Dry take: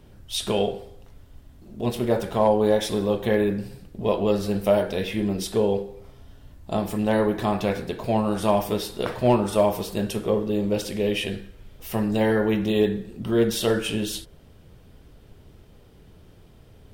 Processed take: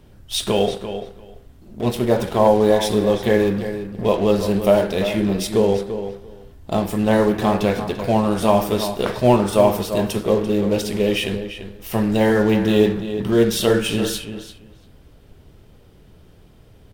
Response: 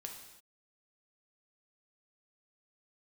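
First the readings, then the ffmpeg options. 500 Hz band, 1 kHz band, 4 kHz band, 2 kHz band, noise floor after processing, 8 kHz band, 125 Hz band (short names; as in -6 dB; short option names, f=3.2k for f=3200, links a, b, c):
+5.0 dB, +5.0 dB, +5.0 dB, +5.0 dB, -49 dBFS, +5.0 dB, +5.0 dB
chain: -filter_complex "[0:a]asplit=2[a][b];[b]acrusher=bits=4:mix=0:aa=0.5,volume=-7dB[c];[a][c]amix=inputs=2:normalize=0,asplit=2[d][e];[e]adelay=341,lowpass=f=4.3k:p=1,volume=-10dB,asplit=2[f][g];[g]adelay=341,lowpass=f=4.3k:p=1,volume=0.16[h];[d][f][h]amix=inputs=3:normalize=0,volume=1.5dB"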